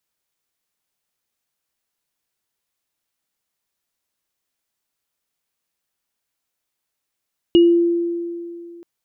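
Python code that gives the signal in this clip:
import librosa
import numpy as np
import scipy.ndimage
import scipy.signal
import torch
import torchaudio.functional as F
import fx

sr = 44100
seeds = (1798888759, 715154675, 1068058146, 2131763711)

y = fx.additive_free(sr, length_s=1.28, hz=342.0, level_db=-7.0, upper_db=(-12.0,), decay_s=2.49, upper_decays_s=(0.28,), upper_hz=(2890.0,))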